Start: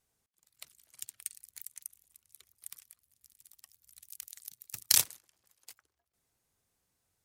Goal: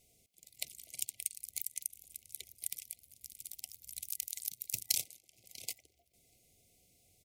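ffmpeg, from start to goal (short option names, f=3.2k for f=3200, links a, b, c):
-filter_complex "[0:a]asplit=2[a][b];[b]adelay=641.4,volume=-28dB,highshelf=f=4k:g=-14.4[c];[a][c]amix=inputs=2:normalize=0,acompressor=threshold=-45dB:ratio=4,afftfilt=real='re*(1-between(b*sr/4096,770,2000))':imag='im*(1-between(b*sr/4096,770,2000))':win_size=4096:overlap=0.75,volume=11.5dB"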